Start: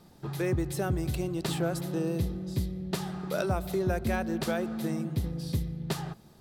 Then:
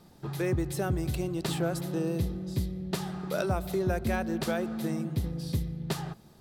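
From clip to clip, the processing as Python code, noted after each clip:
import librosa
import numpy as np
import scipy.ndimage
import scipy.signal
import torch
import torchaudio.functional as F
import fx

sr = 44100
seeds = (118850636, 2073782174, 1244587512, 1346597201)

y = x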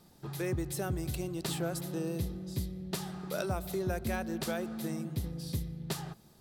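y = fx.high_shelf(x, sr, hz=4500.0, db=7.0)
y = y * librosa.db_to_amplitude(-5.0)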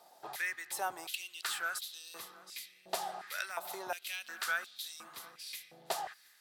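y = fx.echo_feedback(x, sr, ms=718, feedback_pct=26, wet_db=-21.5)
y = fx.filter_held_highpass(y, sr, hz=2.8, low_hz=700.0, high_hz=3700.0)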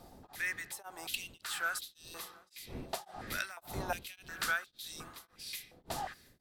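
y = fx.dmg_wind(x, sr, seeds[0], corner_hz=310.0, level_db=-52.0)
y = y * np.abs(np.cos(np.pi * 1.8 * np.arange(len(y)) / sr))
y = y * librosa.db_to_amplitude(2.0)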